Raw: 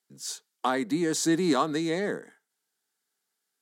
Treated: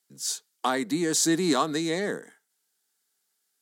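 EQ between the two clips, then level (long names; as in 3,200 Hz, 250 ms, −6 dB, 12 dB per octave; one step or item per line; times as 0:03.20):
high-shelf EQ 3,500 Hz +7.5 dB
0.0 dB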